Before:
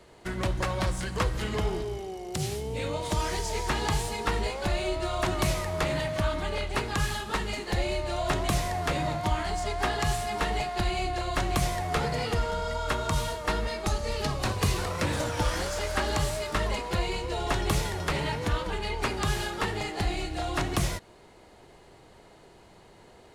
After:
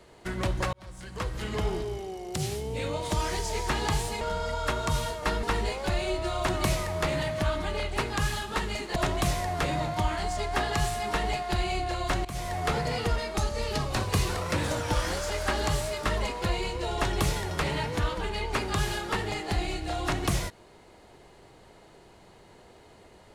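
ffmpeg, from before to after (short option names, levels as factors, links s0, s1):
-filter_complex "[0:a]asplit=7[s0][s1][s2][s3][s4][s5][s6];[s0]atrim=end=0.73,asetpts=PTS-STARTPTS,afade=t=out:st=0.726:d=0.004:c=hsin[s7];[s1]atrim=start=0.73:end=4.212,asetpts=PTS-STARTPTS,afade=t=in:d=0.96[s8];[s2]atrim=start=12.428:end=13.652[s9];[s3]atrim=start=4.208:end=7.742[s10];[s4]atrim=start=8.228:end=11.52,asetpts=PTS-STARTPTS,afade=t=out:st=3.288:d=0.004:c=hsin:silence=0.112202[s11];[s5]atrim=start=11.52:end=12.432,asetpts=PTS-STARTPTS,afade=t=in:d=0.32:silence=0.112202[s12];[s6]atrim=start=13.648[s13];[s7][s8]concat=n=2:v=0:a=1[s14];[s14][s9]acrossfade=d=0.004:c1=hsin:c2=hsin[s15];[s15][s10]acrossfade=d=0.004:c1=hsin:c2=hsin[s16];[s11][s12]concat=n=2:v=0:a=1[s17];[s16][s17]acrossfade=d=0.004:c1=hsin:c2=hsin[s18];[s18][s13]acrossfade=d=0.004:c1=hsin:c2=hsin"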